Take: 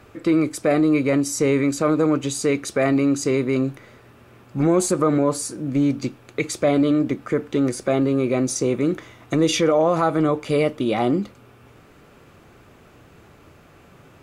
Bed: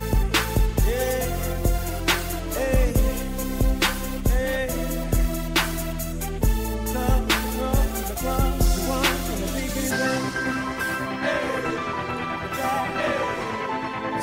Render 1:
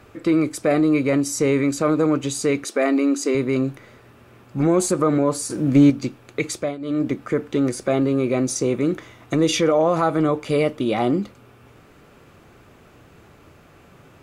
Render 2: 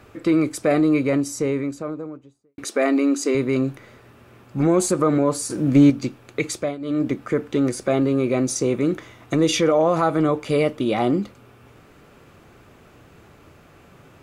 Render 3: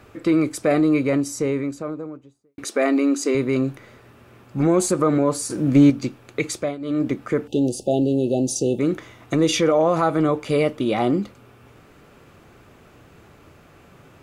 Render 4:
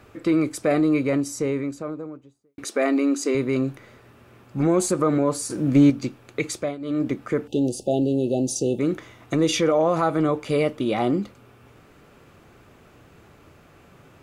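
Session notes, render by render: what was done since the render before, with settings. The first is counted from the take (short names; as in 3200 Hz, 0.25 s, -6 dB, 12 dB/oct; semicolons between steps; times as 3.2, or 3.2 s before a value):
2.64–3.35 brick-wall FIR high-pass 210 Hz; 5.5–5.9 gain +6.5 dB; 6.52–7.05 dip -17.5 dB, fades 0.25 s
0.77–2.58 studio fade out
7.47–8.8 spectral delete 890–2600 Hz
gain -2 dB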